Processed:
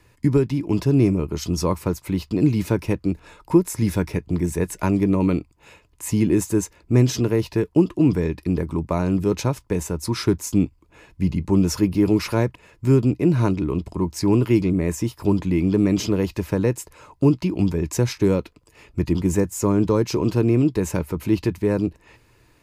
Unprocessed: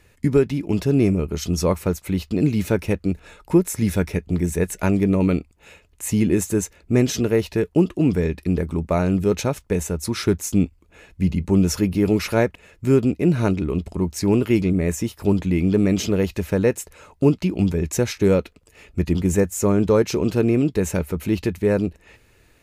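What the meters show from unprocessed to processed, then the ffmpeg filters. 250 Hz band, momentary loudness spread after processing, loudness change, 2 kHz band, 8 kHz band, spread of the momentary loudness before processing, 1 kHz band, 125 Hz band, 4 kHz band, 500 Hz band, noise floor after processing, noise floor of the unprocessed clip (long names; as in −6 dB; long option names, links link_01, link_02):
0.0 dB, 7 LU, −0.5 dB, −3.5 dB, −2.0 dB, 6 LU, +0.5 dB, +0.5 dB, −1.0 dB, −2.0 dB, −58 dBFS, −57 dBFS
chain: -filter_complex "[0:a]equalizer=frequency=4900:width=6.9:gain=5.5,acrossover=split=380|3000[link_01][link_02][link_03];[link_02]acompressor=threshold=-23dB:ratio=2.5[link_04];[link_01][link_04][link_03]amix=inputs=3:normalize=0,equalizer=frequency=125:width_type=o:width=0.33:gain=8,equalizer=frequency=315:width_type=o:width=0.33:gain=6,equalizer=frequency=1000:width_type=o:width=0.33:gain=10,volume=-2.5dB"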